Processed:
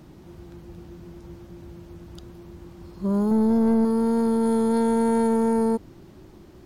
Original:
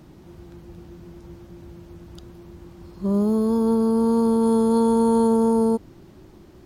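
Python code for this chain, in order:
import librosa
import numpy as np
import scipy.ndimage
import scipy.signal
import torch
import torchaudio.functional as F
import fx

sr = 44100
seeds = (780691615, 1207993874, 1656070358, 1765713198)

y = fx.low_shelf(x, sr, hz=430.0, db=7.0, at=(3.31, 3.85))
y = 10.0 ** (-16.0 / 20.0) * np.tanh(y / 10.0 ** (-16.0 / 20.0))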